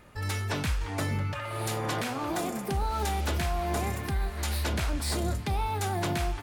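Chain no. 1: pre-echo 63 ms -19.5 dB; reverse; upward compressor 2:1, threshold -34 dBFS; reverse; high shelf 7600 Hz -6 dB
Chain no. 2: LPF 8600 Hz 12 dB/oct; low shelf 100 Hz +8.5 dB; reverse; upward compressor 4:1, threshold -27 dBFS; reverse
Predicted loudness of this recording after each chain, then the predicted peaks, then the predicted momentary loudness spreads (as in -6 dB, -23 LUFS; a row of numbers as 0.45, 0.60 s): -31.0, -28.0 LUFS; -20.5, -15.5 dBFS; 3, 4 LU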